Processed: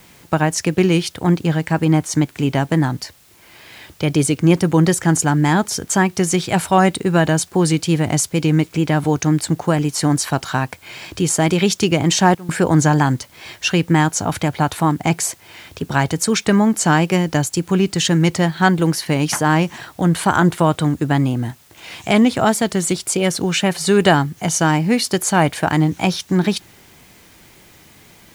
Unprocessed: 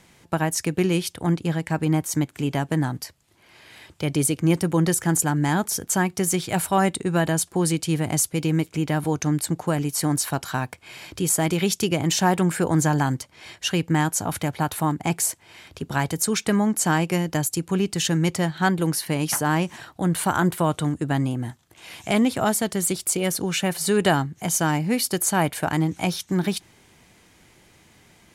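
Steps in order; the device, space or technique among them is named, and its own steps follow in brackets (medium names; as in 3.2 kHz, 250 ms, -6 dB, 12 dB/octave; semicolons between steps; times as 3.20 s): worn cassette (low-pass 7.4 kHz 12 dB/octave; wow and flutter; level dips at 12.35 s, 137 ms -20 dB; white noise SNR 34 dB); trim +6.5 dB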